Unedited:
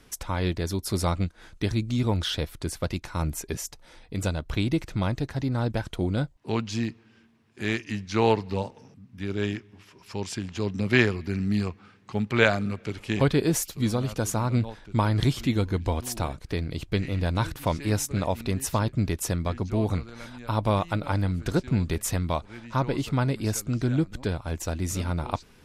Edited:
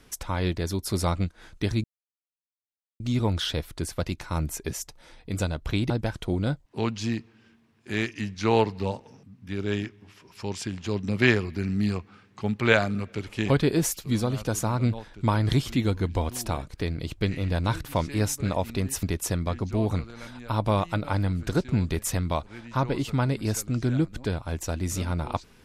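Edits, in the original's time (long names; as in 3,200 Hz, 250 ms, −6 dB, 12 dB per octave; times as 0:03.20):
0:01.84: splice in silence 1.16 s
0:04.74–0:05.61: remove
0:18.74–0:19.02: remove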